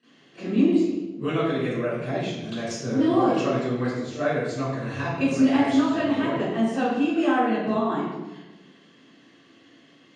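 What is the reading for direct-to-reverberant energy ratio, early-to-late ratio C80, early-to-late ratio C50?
-18.5 dB, 0.5 dB, -3.0 dB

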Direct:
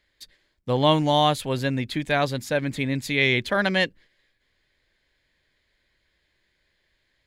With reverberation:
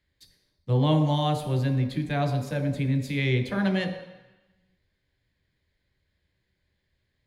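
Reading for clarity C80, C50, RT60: 8.5 dB, 7.0 dB, 1.0 s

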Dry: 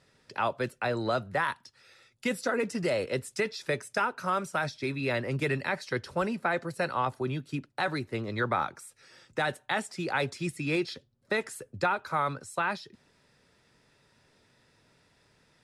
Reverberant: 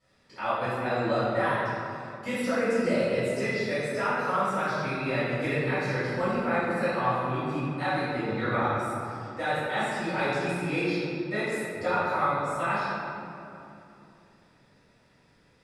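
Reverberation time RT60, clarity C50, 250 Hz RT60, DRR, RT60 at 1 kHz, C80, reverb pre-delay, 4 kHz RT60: 2.9 s, -4.5 dB, 4.1 s, -17.5 dB, 2.7 s, -2.0 dB, 3 ms, 1.5 s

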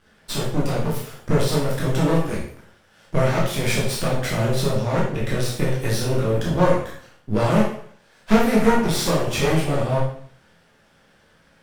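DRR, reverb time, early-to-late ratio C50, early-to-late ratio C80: -5.5 dB, 0.55 s, 3.0 dB, 7.0 dB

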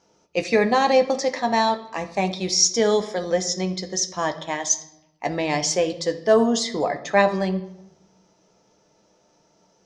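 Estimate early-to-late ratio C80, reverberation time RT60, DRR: 16.0 dB, 0.85 s, 6.5 dB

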